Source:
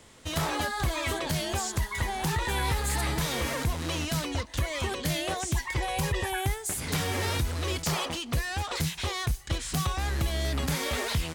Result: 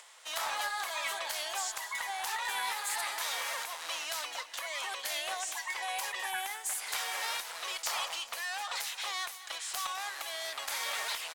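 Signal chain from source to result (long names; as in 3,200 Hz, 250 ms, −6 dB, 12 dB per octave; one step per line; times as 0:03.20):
high-pass filter 720 Hz 24 dB per octave
upward compression, threshold −48 dBFS
tube saturation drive 10 dB, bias 0.55
on a send: repeating echo 208 ms, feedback 56%, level −15 dB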